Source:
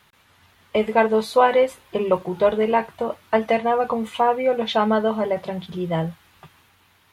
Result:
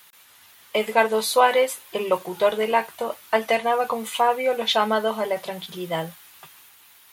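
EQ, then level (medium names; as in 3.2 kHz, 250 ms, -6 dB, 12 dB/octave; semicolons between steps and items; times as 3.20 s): RIAA curve recording; 0.0 dB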